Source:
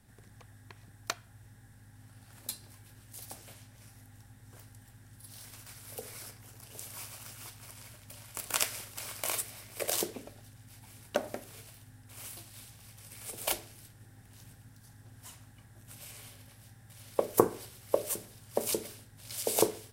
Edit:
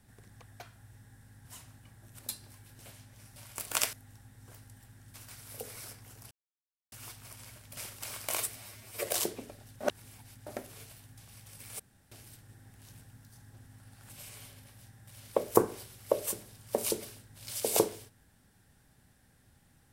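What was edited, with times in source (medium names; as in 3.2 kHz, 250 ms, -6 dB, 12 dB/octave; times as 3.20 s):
0.60–1.11 s: delete
1.96–2.39 s: swap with 15.18–15.92 s
2.99–3.41 s: delete
5.19–5.52 s: delete
6.69–7.30 s: mute
8.15–8.72 s: move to 3.98 s
9.51–9.86 s: stretch 1.5×
10.58–11.24 s: reverse
11.95–12.69 s: delete
13.31–13.63 s: room tone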